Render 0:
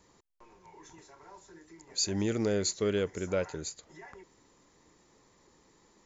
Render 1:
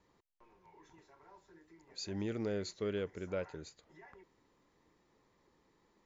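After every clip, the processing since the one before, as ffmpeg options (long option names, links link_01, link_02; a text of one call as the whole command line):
ffmpeg -i in.wav -af "lowpass=3900,volume=-7.5dB" out.wav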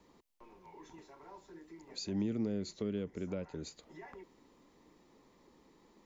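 ffmpeg -i in.wav -filter_complex "[0:a]equalizer=frequency=100:width_type=o:width=0.67:gain=-8,equalizer=frequency=250:width_type=o:width=0.67:gain=5,equalizer=frequency=1600:width_type=o:width=0.67:gain=-5,acrossover=split=220[link_01][link_02];[link_02]acompressor=threshold=-47dB:ratio=6[link_03];[link_01][link_03]amix=inputs=2:normalize=0,volume=7dB" out.wav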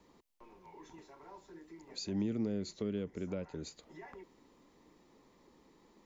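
ffmpeg -i in.wav -af anull out.wav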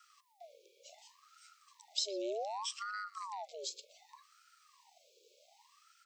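ffmpeg -i in.wav -filter_complex "[0:a]asplit=2[link_01][link_02];[link_02]adelay=120,highpass=300,lowpass=3400,asoftclip=type=hard:threshold=-34.5dB,volume=-13dB[link_03];[link_01][link_03]amix=inputs=2:normalize=0,afftfilt=real='re*(1-between(b*sr/4096,120,2700))':imag='im*(1-between(b*sr/4096,120,2700))':win_size=4096:overlap=0.75,aeval=exprs='val(0)*sin(2*PI*910*n/s+910*0.5/0.66*sin(2*PI*0.66*n/s))':channel_layout=same,volume=11dB" out.wav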